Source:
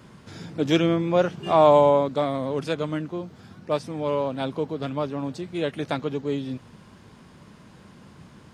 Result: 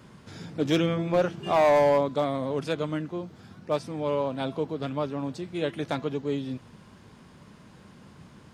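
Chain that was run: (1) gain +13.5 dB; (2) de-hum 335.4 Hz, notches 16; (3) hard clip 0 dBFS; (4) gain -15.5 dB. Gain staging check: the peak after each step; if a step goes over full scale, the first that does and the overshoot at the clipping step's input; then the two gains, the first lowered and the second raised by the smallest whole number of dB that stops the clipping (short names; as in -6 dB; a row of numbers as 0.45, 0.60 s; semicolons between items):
+7.0, +7.5, 0.0, -15.5 dBFS; step 1, 7.5 dB; step 1 +5.5 dB, step 4 -7.5 dB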